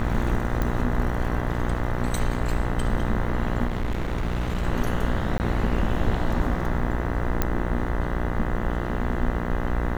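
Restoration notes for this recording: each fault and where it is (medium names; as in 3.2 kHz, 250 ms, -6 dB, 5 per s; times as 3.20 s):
buzz 60 Hz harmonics 34 -28 dBFS
0.62 s: pop -13 dBFS
3.67–4.64 s: clipped -21.5 dBFS
5.38–5.40 s: dropout 19 ms
7.42 s: pop -8 dBFS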